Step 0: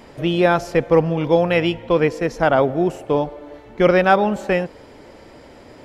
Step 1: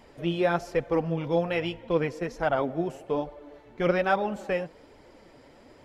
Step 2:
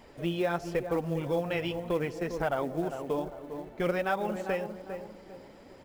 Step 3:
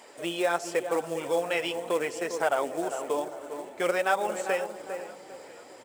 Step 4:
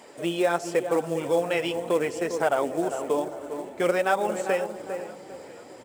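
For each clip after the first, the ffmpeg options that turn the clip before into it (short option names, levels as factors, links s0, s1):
-af "flanger=delay=0.9:depth=7.2:regen=41:speed=1.2:shape=triangular,volume=0.501"
-filter_complex "[0:a]asplit=2[s0][s1];[s1]adelay=401,lowpass=f=1100:p=1,volume=0.299,asplit=2[s2][s3];[s3]adelay=401,lowpass=f=1100:p=1,volume=0.38,asplit=2[s4][s5];[s5]adelay=401,lowpass=f=1100:p=1,volume=0.38,asplit=2[s6][s7];[s7]adelay=401,lowpass=f=1100:p=1,volume=0.38[s8];[s0][s2][s4][s6][s8]amix=inputs=5:normalize=0,acompressor=threshold=0.0355:ratio=2,acrusher=bits=7:mode=log:mix=0:aa=0.000001"
-filter_complex "[0:a]highpass=450,equalizer=f=8100:t=o:w=0.55:g=13.5,asplit=5[s0][s1][s2][s3][s4];[s1]adelay=498,afreqshift=-31,volume=0.106[s5];[s2]adelay=996,afreqshift=-62,volume=0.0569[s6];[s3]adelay=1494,afreqshift=-93,volume=0.0309[s7];[s4]adelay=1992,afreqshift=-124,volume=0.0166[s8];[s0][s5][s6][s7][s8]amix=inputs=5:normalize=0,volume=1.78"
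-af "lowshelf=f=350:g=11"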